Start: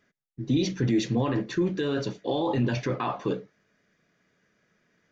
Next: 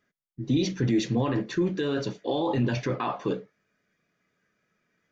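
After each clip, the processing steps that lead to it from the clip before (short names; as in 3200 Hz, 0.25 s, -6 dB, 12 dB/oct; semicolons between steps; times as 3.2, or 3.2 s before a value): spectral noise reduction 6 dB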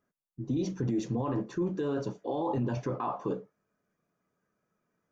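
graphic EQ 1000/2000/4000 Hz +6/-11/-10 dB; limiter -19 dBFS, peak gain reduction 5 dB; gain -3.5 dB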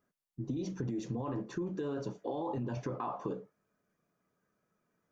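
compressor, threshold -33 dBFS, peak gain reduction 7 dB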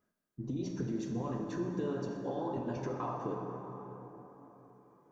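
plate-style reverb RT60 4.2 s, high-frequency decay 0.45×, DRR 1.5 dB; gain -1.5 dB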